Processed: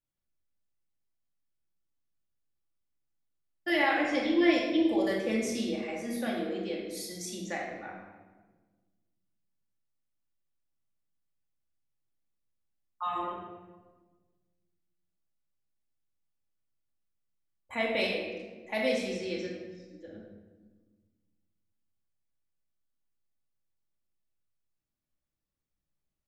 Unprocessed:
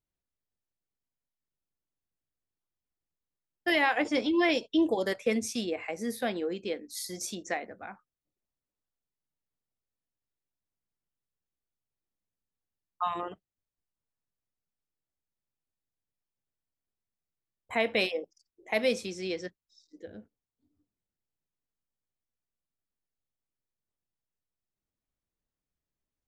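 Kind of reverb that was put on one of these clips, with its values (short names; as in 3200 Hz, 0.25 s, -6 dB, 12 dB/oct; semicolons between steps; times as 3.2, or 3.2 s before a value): shoebox room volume 1000 m³, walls mixed, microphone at 2.4 m; gain -6 dB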